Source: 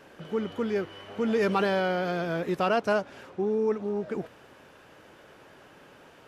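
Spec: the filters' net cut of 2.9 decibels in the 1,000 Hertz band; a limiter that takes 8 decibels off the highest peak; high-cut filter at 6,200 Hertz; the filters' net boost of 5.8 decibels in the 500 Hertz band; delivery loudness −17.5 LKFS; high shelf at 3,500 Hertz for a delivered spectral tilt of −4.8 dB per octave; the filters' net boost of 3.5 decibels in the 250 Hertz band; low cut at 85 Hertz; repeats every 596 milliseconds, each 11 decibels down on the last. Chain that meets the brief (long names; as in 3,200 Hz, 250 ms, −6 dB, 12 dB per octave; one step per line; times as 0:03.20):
high-pass filter 85 Hz
low-pass filter 6,200 Hz
parametric band 250 Hz +3 dB
parametric band 500 Hz +8.5 dB
parametric band 1,000 Hz −9 dB
high-shelf EQ 3,500 Hz −7 dB
brickwall limiter −19 dBFS
repeating echo 596 ms, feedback 28%, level −11 dB
level +10 dB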